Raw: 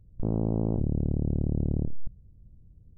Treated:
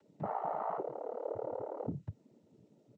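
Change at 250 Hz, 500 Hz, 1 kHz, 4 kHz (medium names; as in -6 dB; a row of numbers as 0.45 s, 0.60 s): -17.0 dB, -1.0 dB, +11.0 dB, no reading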